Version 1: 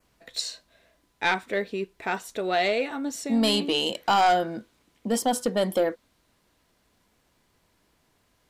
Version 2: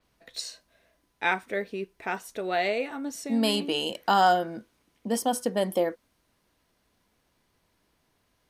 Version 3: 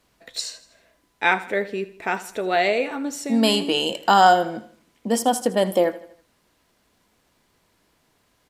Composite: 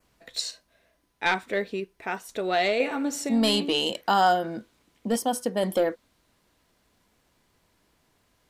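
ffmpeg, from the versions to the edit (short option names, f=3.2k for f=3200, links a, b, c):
-filter_complex "[1:a]asplit=4[a][b][c][d];[0:a]asplit=6[e][f][g][h][i][j];[e]atrim=end=0.512[k];[a]atrim=start=0.508:end=1.262[l];[f]atrim=start=1.258:end=1.802[m];[b]atrim=start=1.798:end=2.292[n];[g]atrim=start=2.288:end=2.802[o];[2:a]atrim=start=2.798:end=3.292[p];[h]atrim=start=3.288:end=4.012[q];[c]atrim=start=4.008:end=4.442[r];[i]atrim=start=4.438:end=5.162[s];[d]atrim=start=5.158:end=5.632[t];[j]atrim=start=5.628[u];[k][l]acrossfade=d=0.004:c1=hsin:c2=hsin[v];[v][m]acrossfade=d=0.004:c1=hsin:c2=hsin[w];[w][n]acrossfade=d=0.004:c1=hsin:c2=hsin[x];[x][o]acrossfade=d=0.004:c1=hsin:c2=hsin[y];[y][p]acrossfade=d=0.004:c1=hsin:c2=hsin[z];[z][q]acrossfade=d=0.004:c1=hsin:c2=hsin[aa];[aa][r]acrossfade=d=0.004:c1=hsin:c2=hsin[ab];[ab][s]acrossfade=d=0.004:c1=hsin:c2=hsin[ac];[ac][t]acrossfade=d=0.004:c1=hsin:c2=hsin[ad];[ad][u]acrossfade=d=0.004:c1=hsin:c2=hsin"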